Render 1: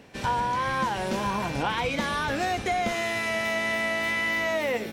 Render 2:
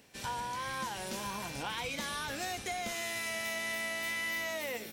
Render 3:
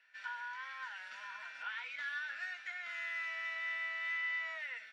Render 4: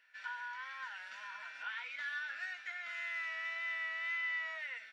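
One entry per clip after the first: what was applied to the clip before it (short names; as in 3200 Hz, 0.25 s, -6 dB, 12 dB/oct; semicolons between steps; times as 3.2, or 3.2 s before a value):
pre-emphasis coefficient 0.8; gain +1 dB
ladder band-pass 1700 Hz, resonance 65%; reverb, pre-delay 3 ms, DRR 5 dB; gain -2 dB
wow and flutter 20 cents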